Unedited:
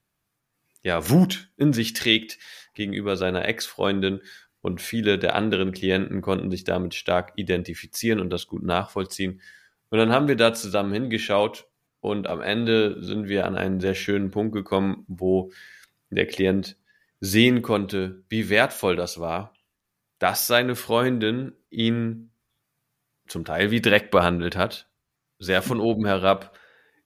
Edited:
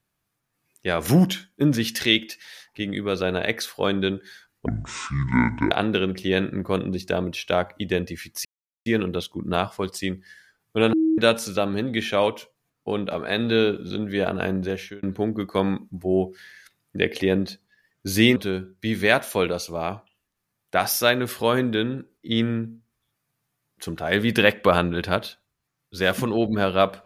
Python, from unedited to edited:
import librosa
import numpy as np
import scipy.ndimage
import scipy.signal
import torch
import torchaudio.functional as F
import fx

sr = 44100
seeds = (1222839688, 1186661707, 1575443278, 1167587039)

y = fx.edit(x, sr, fx.speed_span(start_s=4.66, length_s=0.63, speed=0.6),
    fx.insert_silence(at_s=8.03, length_s=0.41),
    fx.bleep(start_s=10.1, length_s=0.25, hz=319.0, db=-16.5),
    fx.fade_out_span(start_s=13.73, length_s=0.47),
    fx.cut(start_s=17.53, length_s=0.31), tone=tone)